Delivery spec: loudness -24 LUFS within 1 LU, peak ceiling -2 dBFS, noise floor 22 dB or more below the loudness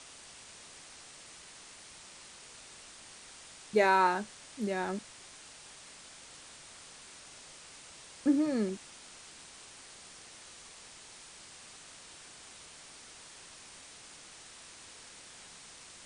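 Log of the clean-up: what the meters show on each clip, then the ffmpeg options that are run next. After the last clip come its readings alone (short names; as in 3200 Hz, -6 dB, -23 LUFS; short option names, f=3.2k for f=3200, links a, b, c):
noise floor -52 dBFS; noise floor target -53 dBFS; loudness -30.5 LUFS; peak -13.5 dBFS; loudness target -24.0 LUFS
-> -af "afftdn=nr=6:nf=-52"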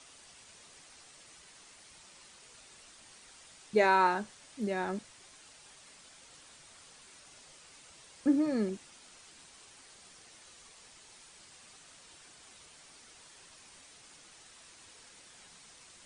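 noise floor -57 dBFS; loudness -30.5 LUFS; peak -13.5 dBFS; loudness target -24.0 LUFS
-> -af "volume=6.5dB"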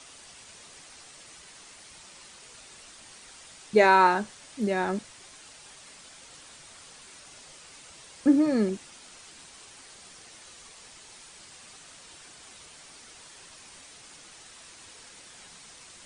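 loudness -24.0 LUFS; peak -7.0 dBFS; noise floor -50 dBFS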